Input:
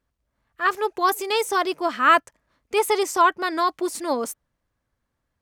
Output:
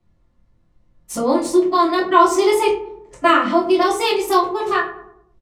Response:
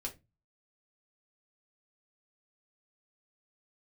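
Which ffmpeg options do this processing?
-filter_complex "[0:a]areverse,lowshelf=f=330:g=11,bandreject=f=1.6k:w=5.4,asplit=2[a][b];[b]adelay=24,volume=-5dB[c];[a][c]amix=inputs=2:normalize=0,asplit=2[d][e];[e]adelay=102,lowpass=f=1.2k:p=1,volume=-12dB,asplit=2[f][g];[g]adelay=102,lowpass=f=1.2k:p=1,volume=0.47,asplit=2[h][i];[i]adelay=102,lowpass=f=1.2k:p=1,volume=0.47,asplit=2[j][k];[k]adelay=102,lowpass=f=1.2k:p=1,volume=0.47,asplit=2[l][m];[m]adelay=102,lowpass=f=1.2k:p=1,volume=0.47[n];[d][f][h][j][l][n]amix=inputs=6:normalize=0[o];[1:a]atrim=start_sample=2205,atrim=end_sample=3087,asetrate=29988,aresample=44100[p];[o][p]afir=irnorm=-1:irlink=0,acrossover=split=310|2900[q][r][s];[s]adynamicsmooth=sensitivity=3:basefreq=5.8k[t];[q][r][t]amix=inputs=3:normalize=0,highshelf=f=4.5k:g=7.5,asplit=2[u][v];[v]acompressor=threshold=-24dB:ratio=6,volume=-2dB[w];[u][w]amix=inputs=2:normalize=0,volume=-2dB"

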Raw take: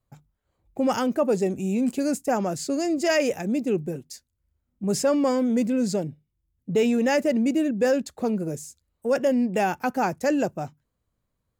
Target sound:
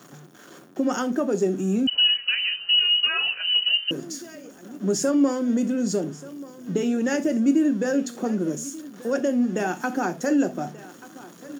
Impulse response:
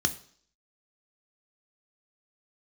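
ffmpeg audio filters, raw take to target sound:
-filter_complex "[0:a]aeval=exprs='val(0)+0.5*0.0106*sgn(val(0))':c=same,highpass=f=210:w=0.5412,highpass=f=210:w=1.3066,acompressor=threshold=-24dB:ratio=2,aecho=1:1:1184|2368|3552:0.119|0.0475|0.019[a];[1:a]atrim=start_sample=2205,atrim=end_sample=3969[b];[a][b]afir=irnorm=-1:irlink=0,asettb=1/sr,asplit=3[c][d][e];[c]atrim=end=1.874[f];[d]atrim=start=1.87:end=3.91,asetpts=PTS-STARTPTS,afade=t=in:d=0.004:c=qsin,afade=t=out:st=2.036:d=0.004:c=qsin,lowpass=f=2.7k:t=q:w=0.5098,lowpass=f=2.7k:t=q:w=0.6013,lowpass=f=2.7k:t=q:w=0.9,lowpass=f=2.7k:t=q:w=2.563,afreqshift=-3200[g];[e]atrim=start=3.906[h];[f][g]acrossfade=d=0.004:c1=hsin:c2=qsin[i];[i][h]acrossfade=d=0.004:c1=qsin:c2=hsin,volume=-7.5dB"

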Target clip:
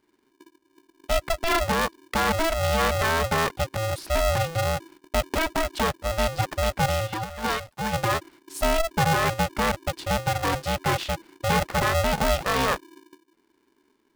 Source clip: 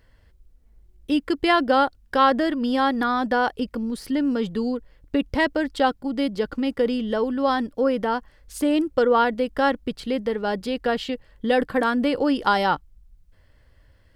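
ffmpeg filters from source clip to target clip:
-filter_complex "[0:a]agate=range=-12dB:threshold=-48dB:ratio=16:detection=peak,asplit=3[a][b][c];[a]afade=t=out:st=7.06:d=0.02[d];[b]highpass=f=1.1k:p=1,afade=t=in:st=7.06:d=0.02,afade=t=out:st=7.92:d=0.02[e];[c]afade=t=in:st=7.92:d=0.02[f];[d][e][f]amix=inputs=3:normalize=0,alimiter=limit=-14.5dB:level=0:latency=1:release=32,aeval=exprs='val(0)*sgn(sin(2*PI*330*n/s))':c=same"

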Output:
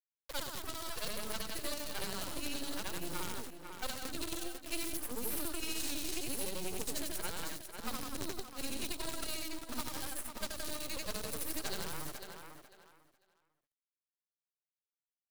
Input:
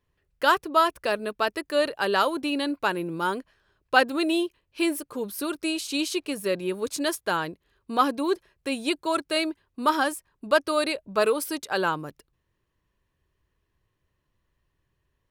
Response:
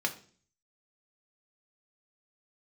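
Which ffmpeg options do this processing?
-filter_complex "[0:a]afftfilt=real='re':imag='-im':win_size=8192:overlap=0.75,acrossover=split=1500[a][b];[b]crystalizer=i=1:c=0[c];[a][c]amix=inputs=2:normalize=0,acrusher=bits=5:dc=4:mix=0:aa=0.000001,alimiter=limit=-21dB:level=0:latency=1:release=16,acompressor=threshold=-32dB:ratio=6,aecho=1:1:496|992|1488:0.237|0.0498|0.0105,acrossover=split=180|3900[d][e][f];[d]acompressor=threshold=-44dB:ratio=4[g];[e]acompressor=threshold=-51dB:ratio=4[h];[f]acompressor=threshold=-45dB:ratio=4[i];[g][h][i]amix=inputs=3:normalize=0,aeval=exprs='0.0531*(cos(1*acos(clip(val(0)/0.0531,-1,1)))-cos(1*PI/2))+0.015*(cos(6*acos(clip(val(0)/0.0531,-1,1)))-cos(6*PI/2))':c=same,volume=2dB"

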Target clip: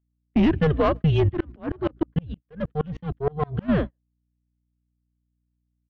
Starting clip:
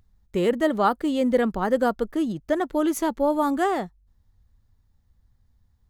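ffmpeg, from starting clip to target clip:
-filter_complex "[0:a]highpass=f=290:t=q:w=0.5412,highpass=f=290:t=q:w=1.307,lowpass=f=3.5k:t=q:w=0.5176,lowpass=f=3.5k:t=q:w=0.7071,lowpass=f=3.5k:t=q:w=1.932,afreqshift=-150,equalizer=f=890:w=1.7:g=-9,aeval=exprs='(tanh(7.08*val(0)+0.4)-tanh(0.4))/7.08':c=same,equalizer=f=210:w=0.46:g=3.5,asplit=2[a][b];[b]adelay=150,highpass=300,lowpass=3.4k,asoftclip=type=hard:threshold=-22dB,volume=-26dB[c];[a][c]amix=inputs=2:normalize=0,alimiter=limit=-17dB:level=0:latency=1:release=362,aphaser=in_gain=1:out_gain=1:delay=1.9:decay=0.33:speed=0.58:type=triangular,aeval=exprs='0.211*sin(PI/2*1.78*val(0)/0.211)':c=same,aeval=exprs='val(0)+0.0282*(sin(2*PI*60*n/s)+sin(2*PI*2*60*n/s)/2+sin(2*PI*3*60*n/s)/3+sin(2*PI*4*60*n/s)/4+sin(2*PI*5*60*n/s)/5)':c=same,agate=range=-42dB:threshold=-24dB:ratio=16:detection=peak,asplit=3[d][e][f];[d]afade=t=out:st=1.28:d=0.02[g];[e]aeval=exprs='val(0)*pow(10,-34*if(lt(mod(-6.4*n/s,1),2*abs(-6.4)/1000),1-mod(-6.4*n/s,1)/(2*abs(-6.4)/1000),(mod(-6.4*n/s,1)-2*abs(-6.4)/1000)/(1-2*abs(-6.4)/1000))/20)':c=same,afade=t=in:st=1.28:d=0.02,afade=t=out:st=3.68:d=0.02[h];[f]afade=t=in:st=3.68:d=0.02[i];[g][h][i]amix=inputs=3:normalize=0"

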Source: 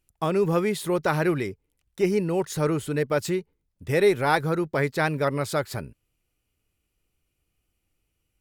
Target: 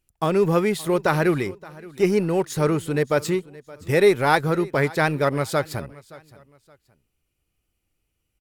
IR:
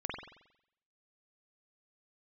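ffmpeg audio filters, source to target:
-filter_complex "[0:a]asplit=2[a][b];[b]aeval=exprs='sgn(val(0))*max(abs(val(0))-0.0178,0)':c=same,volume=-5dB[c];[a][c]amix=inputs=2:normalize=0,aecho=1:1:571|1142:0.0891|0.0267"

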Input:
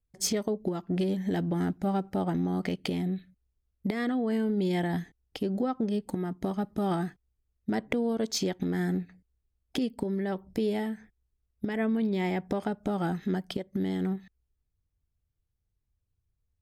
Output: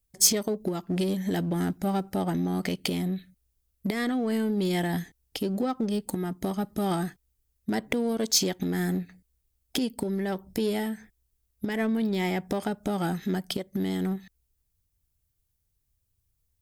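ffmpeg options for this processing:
-filter_complex "[0:a]asplit=2[a][b];[b]volume=33dB,asoftclip=hard,volume=-33dB,volume=-11dB[c];[a][c]amix=inputs=2:normalize=0,crystalizer=i=2.5:c=0"

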